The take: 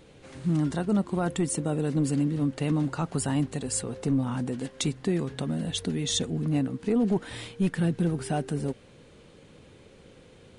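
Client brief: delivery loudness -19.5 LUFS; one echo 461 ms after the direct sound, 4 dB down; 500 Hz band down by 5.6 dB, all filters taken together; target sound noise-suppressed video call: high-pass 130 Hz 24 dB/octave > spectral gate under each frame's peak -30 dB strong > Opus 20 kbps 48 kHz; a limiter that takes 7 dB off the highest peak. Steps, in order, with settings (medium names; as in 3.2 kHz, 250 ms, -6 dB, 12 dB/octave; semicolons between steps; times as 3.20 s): peaking EQ 500 Hz -7.5 dB; peak limiter -23.5 dBFS; high-pass 130 Hz 24 dB/octave; delay 461 ms -4 dB; spectral gate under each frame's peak -30 dB strong; trim +12.5 dB; Opus 20 kbps 48 kHz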